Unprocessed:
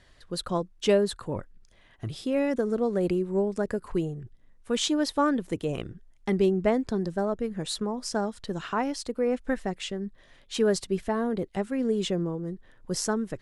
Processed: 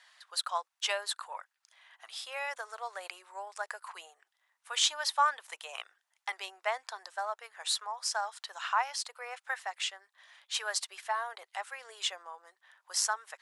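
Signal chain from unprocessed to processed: steep high-pass 790 Hz 36 dB/octave; trim +2 dB

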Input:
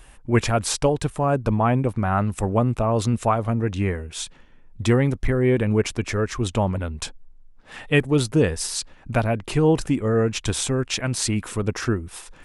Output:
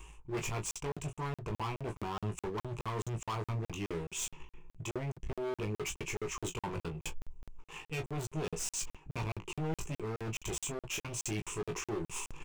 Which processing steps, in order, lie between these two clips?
rippled EQ curve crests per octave 0.72, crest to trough 16 dB; waveshaping leveller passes 1; reverse; compression 5:1, threshold -26 dBFS, peak gain reduction 17.5 dB; reverse; hard clipper -29 dBFS, distortion -8 dB; on a send: early reflections 19 ms -4.5 dB, 36 ms -12.5 dB; on the sum: crackling interface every 0.21 s, samples 2048, zero, from 0.71 s; trim -6 dB

